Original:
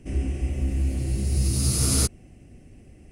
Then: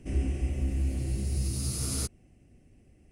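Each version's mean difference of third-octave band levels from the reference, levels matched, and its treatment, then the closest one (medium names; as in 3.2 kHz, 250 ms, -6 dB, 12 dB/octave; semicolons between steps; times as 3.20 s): 2.5 dB: gain riding 0.5 s; trim -6.5 dB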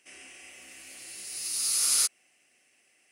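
11.5 dB: high-pass 1.5 kHz 12 dB/octave; trim +1 dB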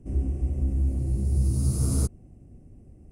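5.5 dB: FFT filter 120 Hz 0 dB, 1.1 kHz -7 dB, 1.8 kHz -18 dB, 3.2 kHz -21 dB, 8.3 kHz -11 dB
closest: first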